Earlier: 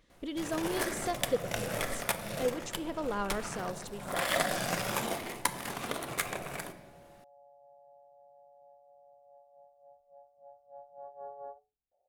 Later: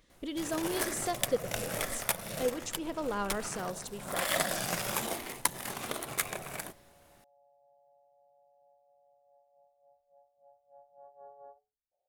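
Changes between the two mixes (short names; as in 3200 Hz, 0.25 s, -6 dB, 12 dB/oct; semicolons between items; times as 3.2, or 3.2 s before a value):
first sound: send off; second sound -7.5 dB; master: add high shelf 5800 Hz +7 dB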